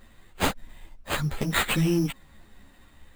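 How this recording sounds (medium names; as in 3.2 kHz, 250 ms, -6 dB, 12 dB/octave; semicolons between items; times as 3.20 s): aliases and images of a low sample rate 5.6 kHz, jitter 0%; a shimmering, thickened sound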